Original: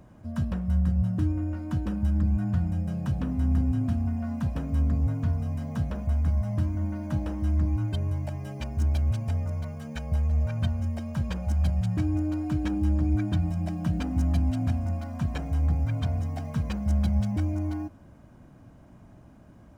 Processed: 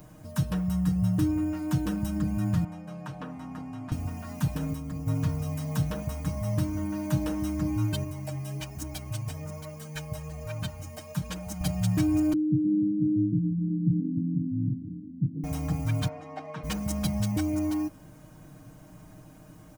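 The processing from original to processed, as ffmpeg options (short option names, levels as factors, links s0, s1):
-filter_complex "[0:a]asettb=1/sr,asplit=3[s0][s1][s2];[s0]atrim=end=2.644[s3];[s1]atrim=start=2.64:end=3.92,asetpts=PTS-STARTPTS,afade=t=in:d=0.004:c=qsin,afade=t=out:st=1.276:d=0.004:c=qsin,bandpass=f=1000:t=q:w=0.77[s4];[s2]atrim=start=3.916[s5];[s3][s4]acrossfade=d=0.004:c1=hsin:c2=qsin[s6];[s6][s5]acrossfade=d=0.004:c1=qsin:c2=hsin,asplit=3[s7][s8][s9];[s7]afade=t=out:st=4.54:d=0.02[s10];[s8]acompressor=threshold=0.0447:ratio=6:attack=3.2:release=140:knee=1:detection=peak,afade=t=in:st=4.54:d=0.02,afade=t=out:st=5.06:d=0.02[s11];[s9]afade=t=in:st=5.06:d=0.02[s12];[s10][s11][s12]amix=inputs=3:normalize=0,asettb=1/sr,asplit=3[s13][s14][s15];[s13]atrim=end=8.044[s16];[s14]atrim=start=8.04:end=11.61,asetpts=PTS-STARTPTS,afade=t=in:d=0.004:c=qsin,afade=t=out:st=3.566:d=0.004:c=qsin,flanger=delay=2.9:depth=5.6:regen=45:speed=1.2:shape=triangular[s17];[s15]atrim=start=11.606[s18];[s16][s17]acrossfade=d=0.004:c1=hsin:c2=qsin[s19];[s19][s18]acrossfade=d=0.004:c1=qsin:c2=hsin,asettb=1/sr,asplit=3[s20][s21][s22];[s20]atrim=end=12.334[s23];[s21]atrim=start=12.33:end=15.44,asetpts=PTS-STARTPTS,afade=t=in:d=0.004:c=qsin,afade=t=out:st=3.106:d=0.004:c=qsin,asuperpass=centerf=200:order=12:qfactor=0.76[s24];[s22]atrim=start=15.436[s25];[s23][s24]acrossfade=d=0.004:c1=hsin:c2=qsin[s26];[s26][s25]acrossfade=d=0.004:c1=qsin:c2=hsin,asplit=3[s27][s28][s29];[s27]afade=t=out:st=16.07:d=0.02[s30];[s28]highpass=360,lowpass=2100,afade=t=in:st=16.07:d=0.02,afade=t=out:st=16.63:d=0.02[s31];[s29]afade=t=in:st=16.63:d=0.02[s32];[s30][s31][s32]amix=inputs=3:normalize=0,aemphasis=mode=production:type=75kf,aecho=1:1:6.5:0.79"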